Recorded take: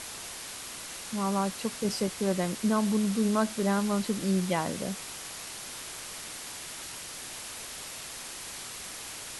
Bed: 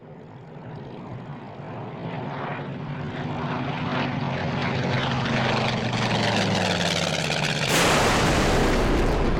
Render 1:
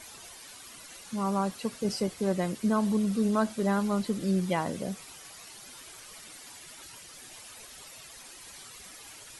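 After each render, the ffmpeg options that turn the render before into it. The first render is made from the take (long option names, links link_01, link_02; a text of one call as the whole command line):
ffmpeg -i in.wav -af "afftdn=noise_reduction=11:noise_floor=-41" out.wav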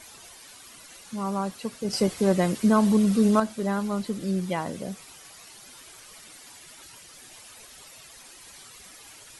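ffmpeg -i in.wav -filter_complex "[0:a]asettb=1/sr,asplit=3[link_01][link_02][link_03];[link_01]atrim=end=1.934[link_04];[link_02]atrim=start=1.93:end=3.4,asetpts=PTS-STARTPTS,afade=type=in:duration=0.004:curve=qsin,afade=type=out:start_time=1.466:duration=0.004:curve=qsin,acontrast=69[link_05];[link_03]atrim=start=3.396[link_06];[link_04][link_05]acrossfade=duration=0.004:curve1=hsin:curve2=qsin[link_07];[link_07][link_06]acrossfade=duration=0.004:curve1=qsin:curve2=hsin" out.wav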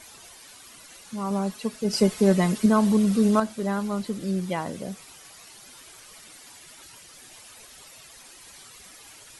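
ffmpeg -i in.wav -filter_complex "[0:a]asettb=1/sr,asplit=3[link_01][link_02][link_03];[link_01]atrim=end=1.304[link_04];[link_02]atrim=start=1.3:end=2.66,asetpts=PTS-STARTPTS,afade=type=in:duration=0.004:curve=qsin,afade=type=out:start_time=1.356:duration=0.004:curve=qsin,aecho=1:1:4.7:0.61,atrim=end_sample=59976[link_05];[link_03]atrim=start=2.656[link_06];[link_04][link_05]acrossfade=duration=0.004:curve1=hsin:curve2=qsin[link_07];[link_07][link_06]acrossfade=duration=0.004:curve1=qsin:curve2=hsin" out.wav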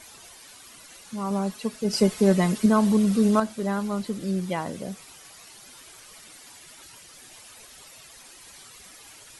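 ffmpeg -i in.wav -af anull out.wav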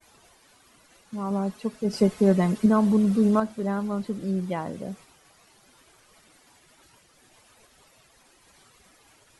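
ffmpeg -i in.wav -af "agate=range=-33dB:threshold=-43dB:ratio=3:detection=peak,highshelf=frequency=2100:gain=-10" out.wav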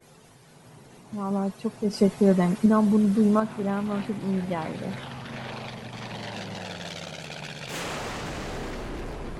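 ffmpeg -i in.wav -i bed.wav -filter_complex "[1:a]volume=-13.5dB[link_01];[0:a][link_01]amix=inputs=2:normalize=0" out.wav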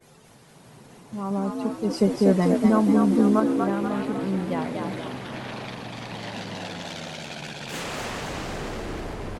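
ffmpeg -i in.wav -filter_complex "[0:a]asplit=7[link_01][link_02][link_03][link_04][link_05][link_06][link_07];[link_02]adelay=241,afreqshift=64,volume=-4.5dB[link_08];[link_03]adelay=482,afreqshift=128,volume=-11.2dB[link_09];[link_04]adelay=723,afreqshift=192,volume=-18dB[link_10];[link_05]adelay=964,afreqshift=256,volume=-24.7dB[link_11];[link_06]adelay=1205,afreqshift=320,volume=-31.5dB[link_12];[link_07]adelay=1446,afreqshift=384,volume=-38.2dB[link_13];[link_01][link_08][link_09][link_10][link_11][link_12][link_13]amix=inputs=7:normalize=0" out.wav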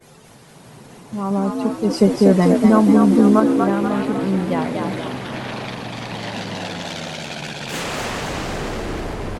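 ffmpeg -i in.wav -af "volume=6.5dB,alimiter=limit=-3dB:level=0:latency=1" out.wav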